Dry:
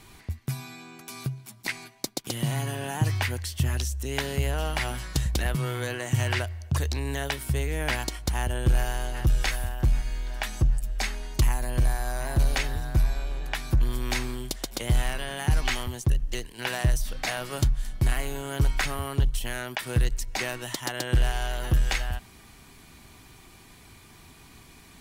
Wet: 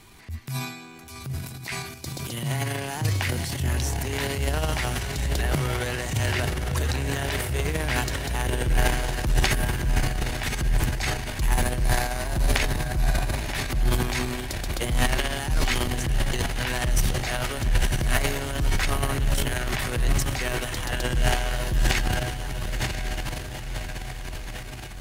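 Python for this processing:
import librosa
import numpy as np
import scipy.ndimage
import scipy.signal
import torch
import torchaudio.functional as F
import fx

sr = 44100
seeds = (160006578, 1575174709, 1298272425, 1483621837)

y = fx.echo_diffused(x, sr, ms=1013, feedback_pct=63, wet_db=-6)
y = np.clip(y, -10.0 ** (-15.0 / 20.0), 10.0 ** (-15.0 / 20.0))
y = fx.transient(y, sr, attack_db=-7, sustain_db=11)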